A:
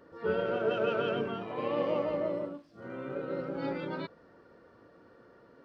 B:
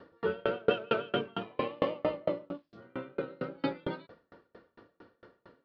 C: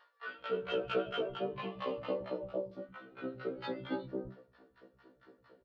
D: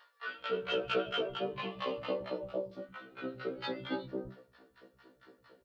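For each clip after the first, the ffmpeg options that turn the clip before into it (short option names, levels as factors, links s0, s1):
-af "lowpass=f=3800:t=q:w=1.9,aeval=exprs='val(0)*pow(10,-35*if(lt(mod(4.4*n/s,1),2*abs(4.4)/1000),1-mod(4.4*n/s,1)/(2*abs(4.4)/1000),(mod(4.4*n/s,1)-2*abs(4.4)/1000)/(1-2*abs(4.4)/1000))/20)':c=same,volume=2.37"
-filter_complex "[0:a]asoftclip=type=tanh:threshold=0.133,acrossover=split=160|820[s0][s1][s2];[s1]adelay=280[s3];[s0]adelay=400[s4];[s4][s3][s2]amix=inputs=3:normalize=0,afftfilt=real='re*1.73*eq(mod(b,3),0)':imag='im*1.73*eq(mod(b,3),0)':win_size=2048:overlap=0.75"
-af "highshelf=f=2000:g=8.5"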